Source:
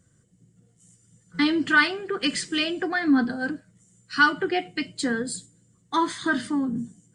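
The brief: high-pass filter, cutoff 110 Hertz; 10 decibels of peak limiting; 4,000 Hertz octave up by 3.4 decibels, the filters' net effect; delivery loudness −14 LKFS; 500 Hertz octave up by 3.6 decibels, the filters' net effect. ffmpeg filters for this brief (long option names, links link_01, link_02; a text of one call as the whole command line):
ffmpeg -i in.wav -af "highpass=110,equalizer=frequency=500:width_type=o:gain=5.5,equalizer=frequency=4000:width_type=o:gain=4.5,volume=11.5dB,alimiter=limit=-3.5dB:level=0:latency=1" out.wav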